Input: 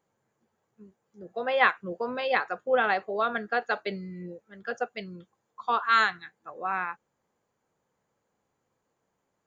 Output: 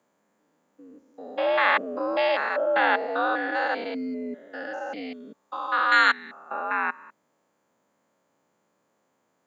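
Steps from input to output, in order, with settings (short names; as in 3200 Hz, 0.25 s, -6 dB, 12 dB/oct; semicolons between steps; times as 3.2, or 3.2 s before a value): stepped spectrum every 0.2 s; frequency shift +73 Hz; gain +7.5 dB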